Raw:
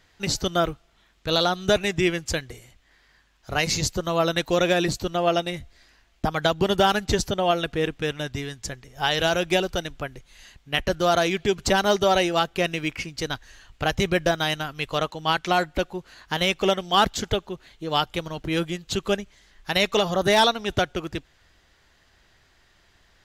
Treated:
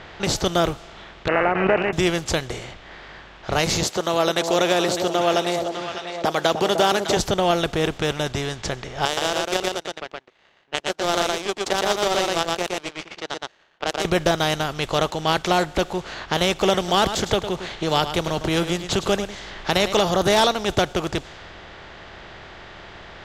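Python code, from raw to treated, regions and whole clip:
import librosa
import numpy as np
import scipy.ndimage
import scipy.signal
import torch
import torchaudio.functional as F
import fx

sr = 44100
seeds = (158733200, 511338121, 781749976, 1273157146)

y = fx.chain(x, sr, fx.highpass(hz=330.0, slope=12),
    fx.resample_bad(factor=8, down='none', up='filtered'),
    fx.pre_swell(db_per_s=68.0), at=(1.28, 1.93))
y = fx.chain(y, sr, fx.highpass(hz=320.0, slope=12),
    fx.echo_alternate(ms=302, hz=830.0, feedback_pct=52, wet_db=-9.0), at=(3.83, 7.17))
y = fx.chain(y, sr, fx.highpass(hz=280.0, slope=24),
    fx.power_curve(exponent=2.0),
    fx.echo_single(ms=118, db=-3.0), at=(9.05, 14.05))
y = fx.chain(y, sr, fx.echo_single(ms=106, db=-17.5),
    fx.band_squash(depth_pct=40), at=(16.74, 19.93))
y = fx.bin_compress(y, sr, power=0.6)
y = fx.env_lowpass(y, sr, base_hz=2800.0, full_db=-18.5)
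y = fx.dynamic_eq(y, sr, hz=2000.0, q=0.74, threshold_db=-31.0, ratio=4.0, max_db=-4)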